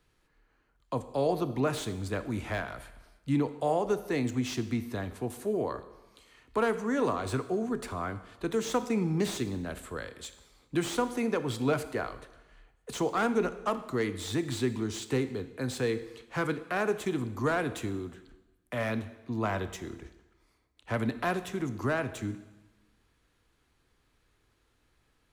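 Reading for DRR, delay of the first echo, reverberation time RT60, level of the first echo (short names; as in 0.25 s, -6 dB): 11.5 dB, none, 1.1 s, none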